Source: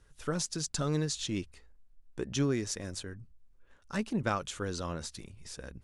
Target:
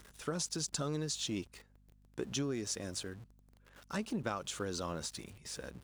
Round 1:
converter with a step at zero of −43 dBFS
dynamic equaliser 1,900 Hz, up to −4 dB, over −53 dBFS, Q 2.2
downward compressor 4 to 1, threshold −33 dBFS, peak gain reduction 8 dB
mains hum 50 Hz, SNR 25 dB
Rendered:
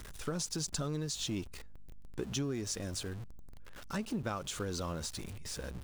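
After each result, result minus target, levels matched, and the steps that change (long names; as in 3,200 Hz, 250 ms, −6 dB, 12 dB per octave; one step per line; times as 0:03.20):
converter with a step at zero: distortion +7 dB; 125 Hz band +3.0 dB
change: converter with a step at zero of −51 dBFS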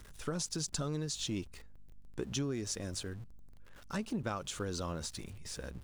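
125 Hz band +2.5 dB
add after dynamic equaliser: high-pass filter 170 Hz 6 dB per octave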